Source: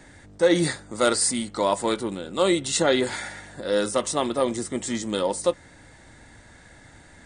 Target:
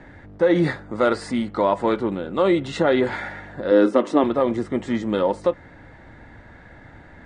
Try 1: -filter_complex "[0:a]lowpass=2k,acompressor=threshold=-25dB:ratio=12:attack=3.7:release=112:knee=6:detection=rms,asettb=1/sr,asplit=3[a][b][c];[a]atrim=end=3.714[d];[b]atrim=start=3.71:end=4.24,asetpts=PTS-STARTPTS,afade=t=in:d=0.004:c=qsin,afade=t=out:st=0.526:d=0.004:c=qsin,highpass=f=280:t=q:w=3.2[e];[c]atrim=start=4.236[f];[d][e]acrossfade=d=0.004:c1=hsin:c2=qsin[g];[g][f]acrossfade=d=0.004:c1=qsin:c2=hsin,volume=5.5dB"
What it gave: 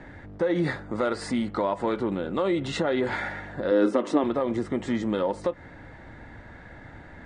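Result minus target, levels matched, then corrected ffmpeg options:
compressor: peak gain reduction +8 dB
-filter_complex "[0:a]lowpass=2k,acompressor=threshold=-16dB:ratio=12:attack=3.7:release=112:knee=6:detection=rms,asettb=1/sr,asplit=3[a][b][c];[a]atrim=end=3.714[d];[b]atrim=start=3.71:end=4.24,asetpts=PTS-STARTPTS,afade=t=in:d=0.004:c=qsin,afade=t=out:st=0.526:d=0.004:c=qsin,highpass=f=280:t=q:w=3.2[e];[c]atrim=start=4.236[f];[d][e]acrossfade=d=0.004:c1=hsin:c2=qsin[g];[g][f]acrossfade=d=0.004:c1=qsin:c2=hsin,volume=5.5dB"

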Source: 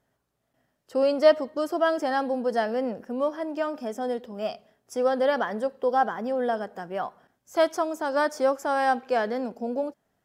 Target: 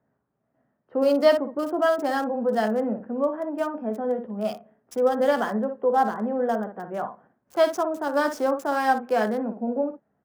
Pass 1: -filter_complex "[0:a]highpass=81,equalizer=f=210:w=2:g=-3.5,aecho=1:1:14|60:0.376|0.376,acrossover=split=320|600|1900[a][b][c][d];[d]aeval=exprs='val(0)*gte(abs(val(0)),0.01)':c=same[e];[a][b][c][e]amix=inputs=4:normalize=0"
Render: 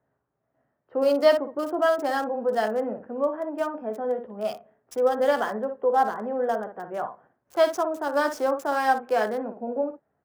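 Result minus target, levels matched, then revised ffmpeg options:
250 Hz band -4.0 dB
-filter_complex "[0:a]highpass=81,equalizer=f=210:w=2:g=5.5,aecho=1:1:14|60:0.376|0.376,acrossover=split=320|600|1900[a][b][c][d];[d]aeval=exprs='val(0)*gte(abs(val(0)),0.01)':c=same[e];[a][b][c][e]amix=inputs=4:normalize=0"

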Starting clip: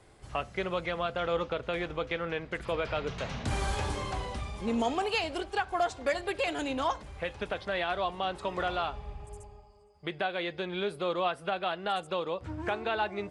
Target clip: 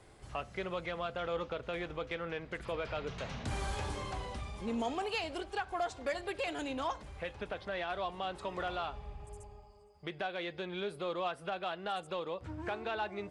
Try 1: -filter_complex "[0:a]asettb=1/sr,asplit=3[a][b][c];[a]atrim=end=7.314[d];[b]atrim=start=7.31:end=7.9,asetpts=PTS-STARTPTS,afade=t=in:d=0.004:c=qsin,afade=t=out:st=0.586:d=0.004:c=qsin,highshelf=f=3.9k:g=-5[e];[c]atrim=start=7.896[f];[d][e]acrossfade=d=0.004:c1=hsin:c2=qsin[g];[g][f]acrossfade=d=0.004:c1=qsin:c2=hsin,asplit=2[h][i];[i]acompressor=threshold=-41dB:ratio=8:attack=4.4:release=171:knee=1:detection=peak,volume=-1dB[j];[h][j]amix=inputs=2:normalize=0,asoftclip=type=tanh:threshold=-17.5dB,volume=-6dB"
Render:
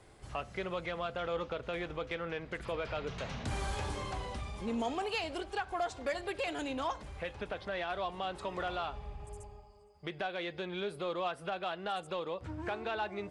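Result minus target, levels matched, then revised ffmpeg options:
compressor: peak gain reduction -6 dB
-filter_complex "[0:a]asettb=1/sr,asplit=3[a][b][c];[a]atrim=end=7.314[d];[b]atrim=start=7.31:end=7.9,asetpts=PTS-STARTPTS,afade=t=in:d=0.004:c=qsin,afade=t=out:st=0.586:d=0.004:c=qsin,highshelf=f=3.9k:g=-5[e];[c]atrim=start=7.896[f];[d][e]acrossfade=d=0.004:c1=hsin:c2=qsin[g];[g][f]acrossfade=d=0.004:c1=qsin:c2=hsin,asplit=2[h][i];[i]acompressor=threshold=-48dB:ratio=8:attack=4.4:release=171:knee=1:detection=peak,volume=-1dB[j];[h][j]amix=inputs=2:normalize=0,asoftclip=type=tanh:threshold=-17.5dB,volume=-6dB"

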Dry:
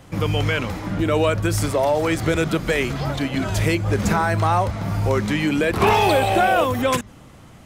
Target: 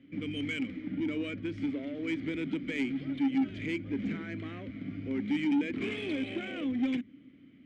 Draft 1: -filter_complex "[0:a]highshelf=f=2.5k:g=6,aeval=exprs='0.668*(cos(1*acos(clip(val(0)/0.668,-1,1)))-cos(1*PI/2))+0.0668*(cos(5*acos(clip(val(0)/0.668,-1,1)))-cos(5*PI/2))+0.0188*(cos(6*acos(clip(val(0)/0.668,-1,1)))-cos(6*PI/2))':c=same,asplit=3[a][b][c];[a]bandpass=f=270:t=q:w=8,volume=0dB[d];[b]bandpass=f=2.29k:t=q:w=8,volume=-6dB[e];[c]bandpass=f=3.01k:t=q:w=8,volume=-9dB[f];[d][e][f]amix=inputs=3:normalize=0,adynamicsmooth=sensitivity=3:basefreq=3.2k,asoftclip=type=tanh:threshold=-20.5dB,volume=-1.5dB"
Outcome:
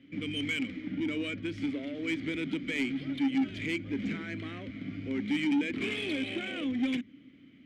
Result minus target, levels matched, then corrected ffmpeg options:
4000 Hz band +5.0 dB
-filter_complex "[0:a]highshelf=f=2.5k:g=-3,aeval=exprs='0.668*(cos(1*acos(clip(val(0)/0.668,-1,1)))-cos(1*PI/2))+0.0668*(cos(5*acos(clip(val(0)/0.668,-1,1)))-cos(5*PI/2))+0.0188*(cos(6*acos(clip(val(0)/0.668,-1,1)))-cos(6*PI/2))':c=same,asplit=3[a][b][c];[a]bandpass=f=270:t=q:w=8,volume=0dB[d];[b]bandpass=f=2.29k:t=q:w=8,volume=-6dB[e];[c]bandpass=f=3.01k:t=q:w=8,volume=-9dB[f];[d][e][f]amix=inputs=3:normalize=0,adynamicsmooth=sensitivity=3:basefreq=3.2k,asoftclip=type=tanh:threshold=-20.5dB,volume=-1.5dB"

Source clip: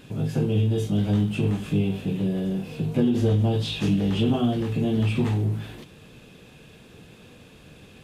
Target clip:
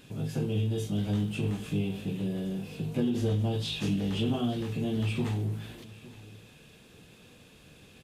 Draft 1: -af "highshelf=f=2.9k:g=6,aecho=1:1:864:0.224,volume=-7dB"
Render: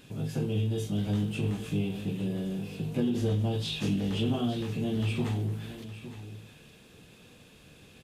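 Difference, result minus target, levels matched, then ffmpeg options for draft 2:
echo-to-direct +6.5 dB
-af "highshelf=f=2.9k:g=6,aecho=1:1:864:0.106,volume=-7dB"

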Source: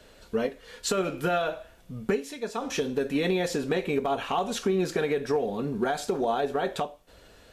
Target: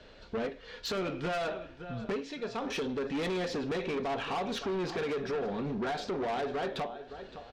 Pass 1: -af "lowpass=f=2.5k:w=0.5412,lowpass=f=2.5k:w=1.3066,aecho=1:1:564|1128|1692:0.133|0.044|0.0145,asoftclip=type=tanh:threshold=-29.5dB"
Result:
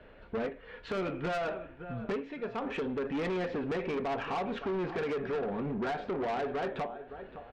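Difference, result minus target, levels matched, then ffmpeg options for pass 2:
4000 Hz band -7.0 dB
-af "lowpass=f=5k:w=0.5412,lowpass=f=5k:w=1.3066,aecho=1:1:564|1128|1692:0.133|0.044|0.0145,asoftclip=type=tanh:threshold=-29.5dB"

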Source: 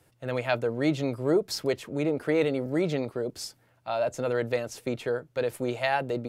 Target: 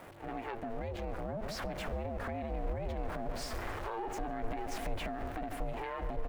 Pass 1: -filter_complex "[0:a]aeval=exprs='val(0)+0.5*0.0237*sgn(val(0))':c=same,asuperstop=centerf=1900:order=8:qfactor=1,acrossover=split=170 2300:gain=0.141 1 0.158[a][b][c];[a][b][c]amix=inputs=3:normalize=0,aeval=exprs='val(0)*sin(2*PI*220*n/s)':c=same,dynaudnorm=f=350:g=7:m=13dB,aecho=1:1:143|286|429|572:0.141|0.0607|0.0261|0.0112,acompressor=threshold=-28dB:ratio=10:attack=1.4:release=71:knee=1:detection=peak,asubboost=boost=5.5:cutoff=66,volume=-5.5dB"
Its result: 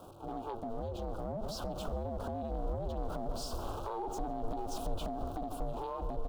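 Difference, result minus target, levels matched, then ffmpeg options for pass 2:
2000 Hz band -13.0 dB
-filter_complex "[0:a]aeval=exprs='val(0)+0.5*0.0237*sgn(val(0))':c=same,acrossover=split=170 2300:gain=0.141 1 0.158[a][b][c];[a][b][c]amix=inputs=3:normalize=0,aeval=exprs='val(0)*sin(2*PI*220*n/s)':c=same,dynaudnorm=f=350:g=7:m=13dB,aecho=1:1:143|286|429|572:0.141|0.0607|0.0261|0.0112,acompressor=threshold=-28dB:ratio=10:attack=1.4:release=71:knee=1:detection=peak,asubboost=boost=5.5:cutoff=66,volume=-5.5dB"

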